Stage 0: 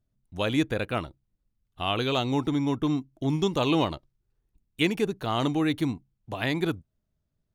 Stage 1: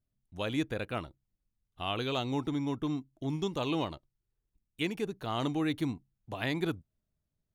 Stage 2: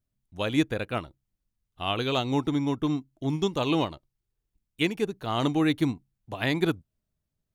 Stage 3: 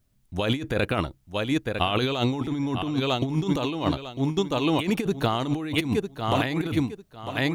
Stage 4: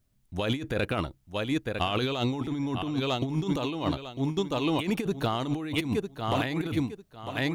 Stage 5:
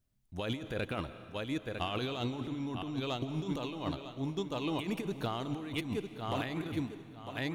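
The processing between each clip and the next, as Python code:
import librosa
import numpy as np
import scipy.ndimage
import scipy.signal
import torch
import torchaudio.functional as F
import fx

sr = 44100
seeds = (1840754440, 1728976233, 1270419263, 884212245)

y1 = fx.rider(x, sr, range_db=10, speed_s=2.0)
y1 = F.gain(torch.from_numpy(y1), -6.5).numpy()
y2 = fx.upward_expand(y1, sr, threshold_db=-41.0, expansion=1.5)
y2 = F.gain(torch.from_numpy(y2), 8.5).numpy()
y3 = fx.echo_feedback(y2, sr, ms=950, feedback_pct=23, wet_db=-12.0)
y3 = fx.over_compress(y3, sr, threshold_db=-33.0, ratio=-1.0)
y3 = F.gain(torch.from_numpy(y3), 8.0).numpy()
y4 = 10.0 ** (-11.5 / 20.0) * np.tanh(y3 / 10.0 ** (-11.5 / 20.0))
y4 = F.gain(torch.from_numpy(y4), -3.0).numpy()
y5 = fx.rev_freeverb(y4, sr, rt60_s=1.9, hf_ratio=0.95, predelay_ms=105, drr_db=12.5)
y5 = F.gain(torch.from_numpy(y5), -7.5).numpy()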